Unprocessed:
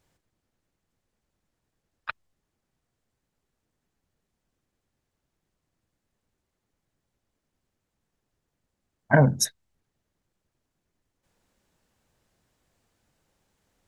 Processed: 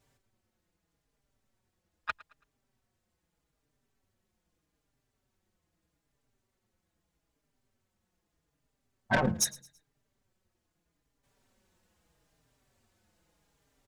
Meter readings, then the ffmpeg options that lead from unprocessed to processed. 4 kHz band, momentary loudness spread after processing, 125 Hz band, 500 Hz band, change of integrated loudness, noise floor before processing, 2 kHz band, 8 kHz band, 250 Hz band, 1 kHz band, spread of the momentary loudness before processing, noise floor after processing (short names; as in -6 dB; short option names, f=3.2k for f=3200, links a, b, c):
-3.5 dB, 16 LU, -13.5 dB, -9.5 dB, -9.0 dB, -82 dBFS, -4.5 dB, -2.5 dB, -7.5 dB, -4.0 dB, 19 LU, -82 dBFS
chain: -filter_complex "[0:a]asoftclip=type=tanh:threshold=-18.5dB,asplit=2[a][b];[b]aecho=0:1:110|220|330:0.0891|0.033|0.0122[c];[a][c]amix=inputs=2:normalize=0,asplit=2[d][e];[e]adelay=4.6,afreqshift=-0.8[f];[d][f]amix=inputs=2:normalize=1,volume=3dB"